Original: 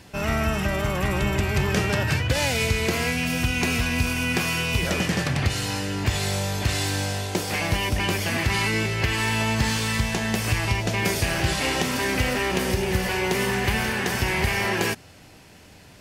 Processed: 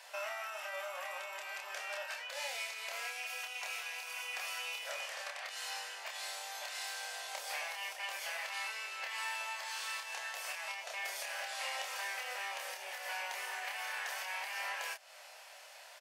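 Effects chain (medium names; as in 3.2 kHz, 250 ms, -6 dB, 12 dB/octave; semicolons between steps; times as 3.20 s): compression, threshold -34 dBFS, peak gain reduction 16 dB; elliptic high-pass 580 Hz, stop band 50 dB; doubling 28 ms -3 dB; trim -3 dB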